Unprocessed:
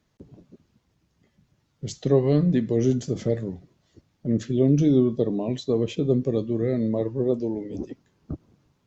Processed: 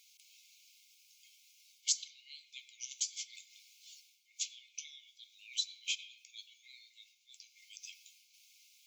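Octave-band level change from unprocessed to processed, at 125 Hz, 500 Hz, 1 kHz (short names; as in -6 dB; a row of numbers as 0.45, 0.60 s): under -40 dB, under -40 dB, under -40 dB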